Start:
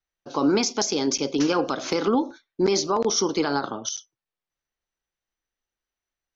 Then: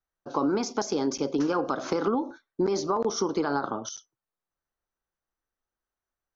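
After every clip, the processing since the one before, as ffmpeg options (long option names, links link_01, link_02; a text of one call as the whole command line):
ffmpeg -i in.wav -af "highshelf=frequency=1800:width_type=q:width=1.5:gain=-7.5,acompressor=threshold=-22dB:ratio=6" out.wav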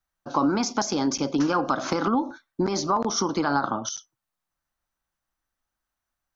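ffmpeg -i in.wav -af "equalizer=frequency=430:width_type=o:width=0.57:gain=-11,volume=6dB" out.wav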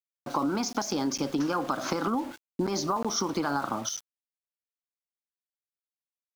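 ffmpeg -i in.wav -af "acompressor=threshold=-26dB:ratio=3,aeval=exprs='val(0)*gte(abs(val(0)),0.00841)':channel_layout=same" out.wav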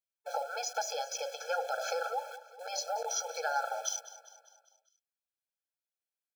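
ffmpeg -i in.wav -af "aecho=1:1:200|400|600|800|1000:0.158|0.0824|0.0429|0.0223|0.0116,afftfilt=real='re*eq(mod(floor(b*sr/1024/440),2),1)':imag='im*eq(mod(floor(b*sr/1024/440),2),1)':win_size=1024:overlap=0.75" out.wav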